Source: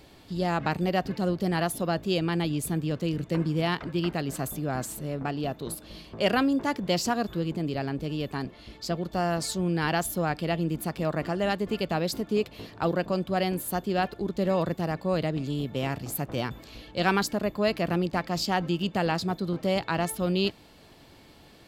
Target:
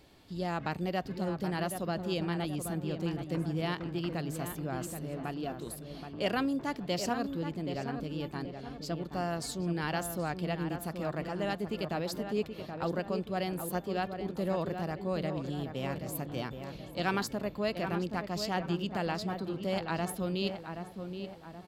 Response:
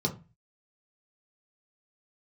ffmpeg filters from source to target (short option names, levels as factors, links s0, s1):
-filter_complex "[0:a]asplit=2[s0][s1];[s1]adelay=776,lowpass=f=1900:p=1,volume=0.447,asplit=2[s2][s3];[s3]adelay=776,lowpass=f=1900:p=1,volume=0.47,asplit=2[s4][s5];[s5]adelay=776,lowpass=f=1900:p=1,volume=0.47,asplit=2[s6][s7];[s7]adelay=776,lowpass=f=1900:p=1,volume=0.47,asplit=2[s8][s9];[s9]adelay=776,lowpass=f=1900:p=1,volume=0.47,asplit=2[s10][s11];[s11]adelay=776,lowpass=f=1900:p=1,volume=0.47[s12];[s0][s2][s4][s6][s8][s10][s12]amix=inputs=7:normalize=0,volume=0.447"